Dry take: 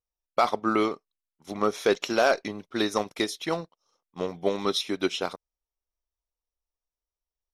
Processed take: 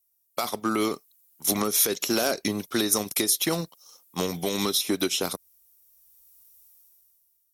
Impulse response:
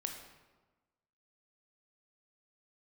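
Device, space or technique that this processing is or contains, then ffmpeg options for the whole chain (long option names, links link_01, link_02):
FM broadcast chain: -filter_complex "[0:a]highpass=41,dynaudnorm=framelen=180:gausssize=9:maxgain=17dB,acrossover=split=350|1400[link_01][link_02][link_03];[link_01]acompressor=threshold=-22dB:ratio=4[link_04];[link_02]acompressor=threshold=-29dB:ratio=4[link_05];[link_03]acompressor=threshold=-34dB:ratio=4[link_06];[link_04][link_05][link_06]amix=inputs=3:normalize=0,aemphasis=mode=production:type=50fm,alimiter=limit=-14.5dB:level=0:latency=1:release=154,asoftclip=type=hard:threshold=-16.5dB,lowpass=frequency=15000:width=0.5412,lowpass=frequency=15000:width=1.3066,aemphasis=mode=production:type=50fm"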